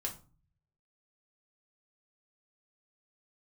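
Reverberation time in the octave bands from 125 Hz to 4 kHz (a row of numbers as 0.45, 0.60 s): 1.1, 0.65, 0.35, 0.35, 0.25, 0.25 s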